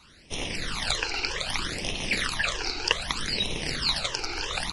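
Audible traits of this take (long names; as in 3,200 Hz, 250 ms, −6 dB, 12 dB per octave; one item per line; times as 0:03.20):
phaser sweep stages 12, 0.64 Hz, lowest notch 180–1,500 Hz
MP3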